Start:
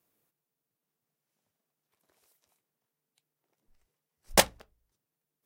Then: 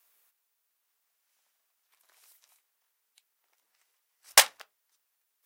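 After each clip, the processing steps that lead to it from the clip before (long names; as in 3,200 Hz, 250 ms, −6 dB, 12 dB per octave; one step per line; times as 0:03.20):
high-pass filter 1,100 Hz 12 dB per octave
boost into a limiter +11 dB
level −1 dB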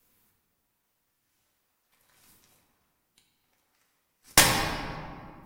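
in parallel at −8.5 dB: sample-and-hold swept by an LFO 39×, swing 160% 1 Hz
on the sum: convolution reverb RT60 2.2 s, pre-delay 4 ms, DRR −2.5 dB
level −2 dB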